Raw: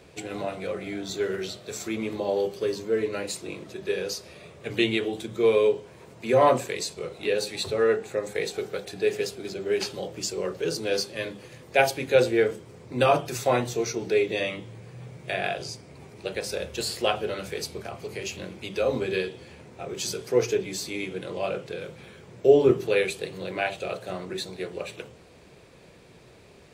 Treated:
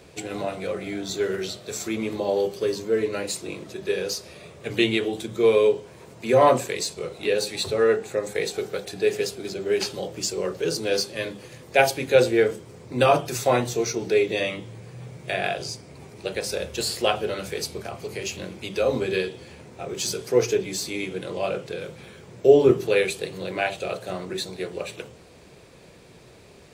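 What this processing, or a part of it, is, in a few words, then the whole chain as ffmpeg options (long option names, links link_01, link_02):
exciter from parts: -filter_complex "[0:a]asplit=2[link_01][link_02];[link_02]highpass=3400,asoftclip=type=tanh:threshold=-33dB,volume=-8.5dB[link_03];[link_01][link_03]amix=inputs=2:normalize=0,volume=2.5dB"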